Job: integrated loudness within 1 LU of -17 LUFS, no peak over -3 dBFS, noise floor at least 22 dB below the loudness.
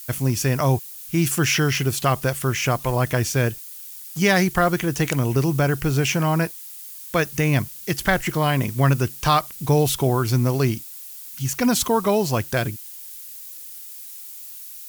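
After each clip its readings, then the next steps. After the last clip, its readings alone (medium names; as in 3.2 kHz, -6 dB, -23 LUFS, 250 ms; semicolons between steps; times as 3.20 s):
noise floor -38 dBFS; noise floor target -44 dBFS; loudness -21.5 LUFS; peak level -4.5 dBFS; loudness target -17.0 LUFS
-> noise reduction 6 dB, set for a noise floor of -38 dBFS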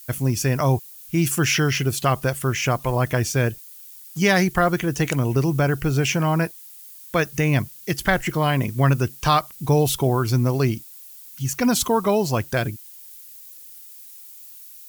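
noise floor -43 dBFS; noise floor target -44 dBFS
-> noise reduction 6 dB, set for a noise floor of -43 dBFS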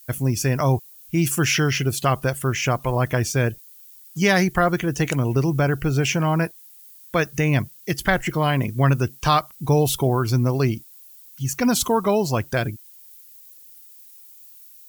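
noise floor -47 dBFS; loudness -21.5 LUFS; peak level -5.0 dBFS; loudness target -17.0 LUFS
-> trim +4.5 dB; peak limiter -3 dBFS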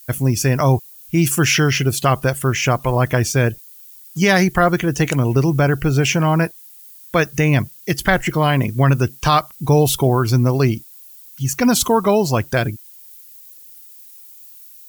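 loudness -17.5 LUFS; peak level -3.0 dBFS; noise floor -42 dBFS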